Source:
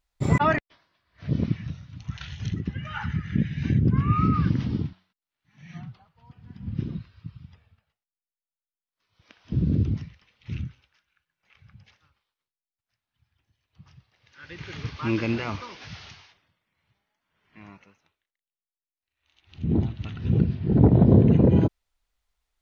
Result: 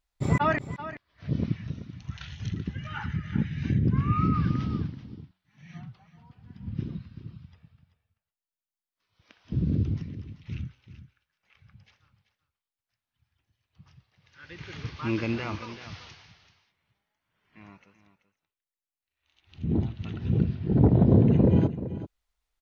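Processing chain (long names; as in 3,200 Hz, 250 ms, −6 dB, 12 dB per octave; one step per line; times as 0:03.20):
single-tap delay 384 ms −13 dB
level −3 dB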